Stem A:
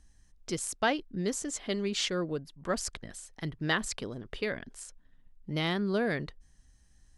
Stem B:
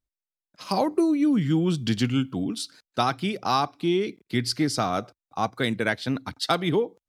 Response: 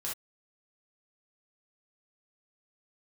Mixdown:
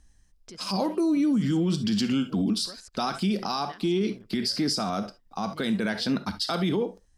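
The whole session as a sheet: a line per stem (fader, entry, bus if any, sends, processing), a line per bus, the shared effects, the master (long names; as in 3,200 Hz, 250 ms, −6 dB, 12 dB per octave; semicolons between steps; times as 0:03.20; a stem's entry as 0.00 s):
+1.5 dB, 0.00 s, no send, downward compressor, threshold −39 dBFS, peak gain reduction 15.5 dB; automatic ducking −7 dB, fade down 0.45 s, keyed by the second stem
+2.0 dB, 0.00 s, send −10 dB, thirty-one-band graphic EQ 125 Hz −11 dB, 200 Hz +11 dB, 2,000 Hz −4 dB, 5,000 Hz +9 dB; brickwall limiter −14.5 dBFS, peak gain reduction 8.5 dB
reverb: on, pre-delay 3 ms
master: brickwall limiter −18 dBFS, peak gain reduction 8.5 dB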